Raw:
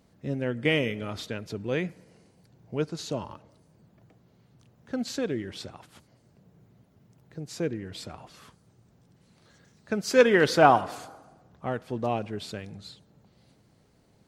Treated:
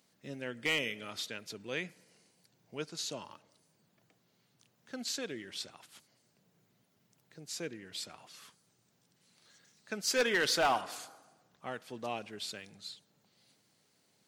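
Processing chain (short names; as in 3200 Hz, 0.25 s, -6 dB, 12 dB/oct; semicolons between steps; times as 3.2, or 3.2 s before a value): HPF 150 Hz 12 dB/oct; tilt shelf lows -7.5 dB, about 1500 Hz; overloaded stage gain 18 dB; gain -5 dB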